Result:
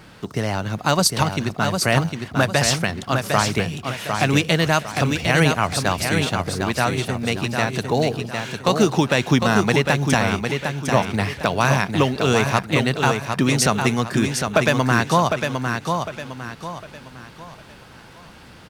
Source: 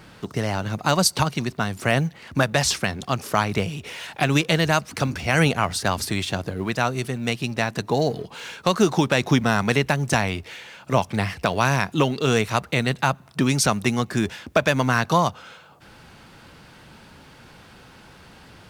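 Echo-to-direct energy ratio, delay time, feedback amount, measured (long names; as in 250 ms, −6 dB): −5.0 dB, 755 ms, 36%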